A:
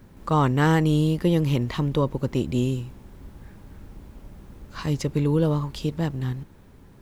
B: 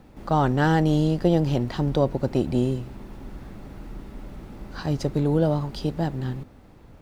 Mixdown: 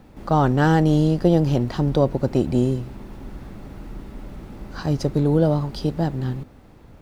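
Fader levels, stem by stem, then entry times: -13.5 dB, +2.0 dB; 0.00 s, 0.00 s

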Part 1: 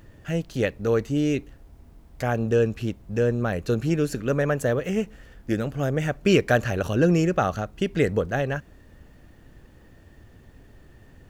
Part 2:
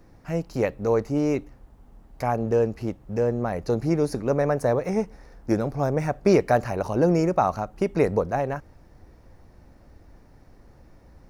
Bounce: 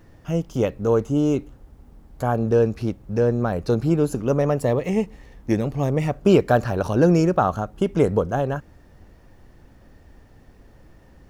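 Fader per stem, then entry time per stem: -3.5 dB, -0.5 dB; 0.00 s, 0.00 s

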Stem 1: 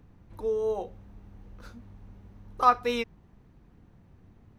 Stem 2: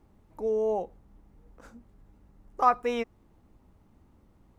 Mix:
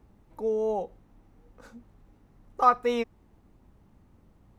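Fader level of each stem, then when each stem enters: -8.0 dB, 0.0 dB; 0.00 s, 0.00 s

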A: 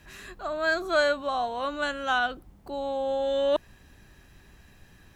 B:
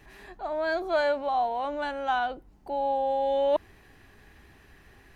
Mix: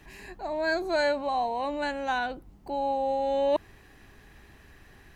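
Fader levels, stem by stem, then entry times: -5.5 dB, 0.0 dB; 0.00 s, 0.00 s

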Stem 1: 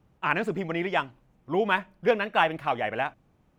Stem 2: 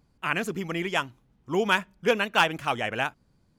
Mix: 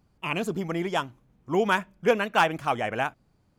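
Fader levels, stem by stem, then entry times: -5.5 dB, -2.5 dB; 0.00 s, 0.00 s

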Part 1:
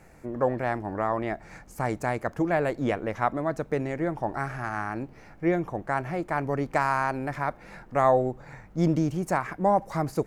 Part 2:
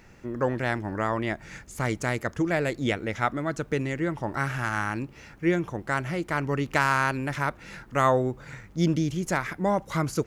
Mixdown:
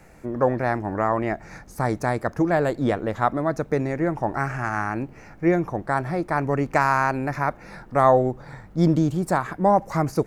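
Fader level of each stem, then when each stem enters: +3.0 dB, -8.5 dB; 0.00 s, 0.00 s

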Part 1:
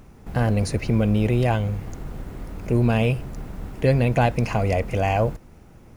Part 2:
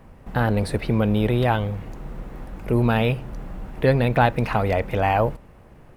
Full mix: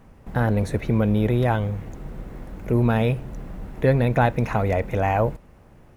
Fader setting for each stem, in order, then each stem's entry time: -9.0 dB, -3.5 dB; 0.00 s, 0.00 s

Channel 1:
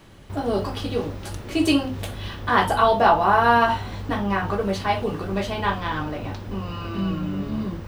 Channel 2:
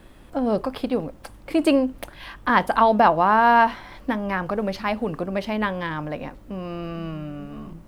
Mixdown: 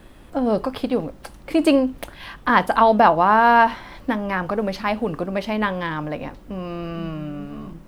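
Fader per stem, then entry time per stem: -16.0 dB, +2.0 dB; 0.00 s, 0.00 s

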